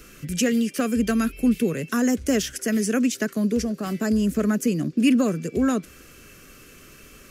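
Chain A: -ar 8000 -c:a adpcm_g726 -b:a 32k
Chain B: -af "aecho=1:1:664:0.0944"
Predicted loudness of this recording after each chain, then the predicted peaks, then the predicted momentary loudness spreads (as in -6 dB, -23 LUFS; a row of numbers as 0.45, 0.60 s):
-23.5, -23.0 LUFS; -8.5, -9.0 dBFS; 4, 7 LU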